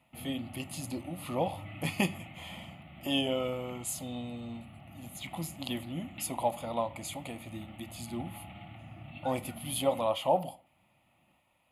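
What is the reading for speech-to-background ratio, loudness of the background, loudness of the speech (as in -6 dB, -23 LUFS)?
14.0 dB, -49.0 LUFS, -35.0 LUFS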